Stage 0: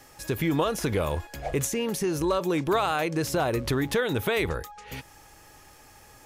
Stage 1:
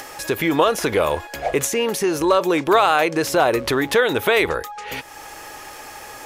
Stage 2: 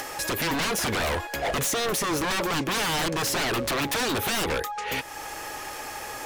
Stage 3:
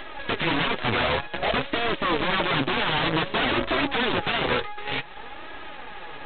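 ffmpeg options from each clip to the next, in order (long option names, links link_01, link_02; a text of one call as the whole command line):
ffmpeg -i in.wav -filter_complex "[0:a]bass=frequency=250:gain=-14,treble=frequency=4000:gain=-4,asplit=2[link_01][link_02];[link_02]acompressor=mode=upward:threshold=-33dB:ratio=2.5,volume=1.5dB[link_03];[link_01][link_03]amix=inputs=2:normalize=0,volume=3.5dB" out.wav
ffmpeg -i in.wav -af "acontrast=68,aeval=exprs='0.168*(abs(mod(val(0)/0.168+3,4)-2)-1)':channel_layout=same,volume=-5.5dB" out.wav
ffmpeg -i in.wav -af "aresample=8000,acrusher=bits=5:dc=4:mix=0:aa=0.000001,aresample=44100,flanger=delay=3:depth=5.2:regen=37:speed=0.54:shape=sinusoidal,volume=5.5dB" out.wav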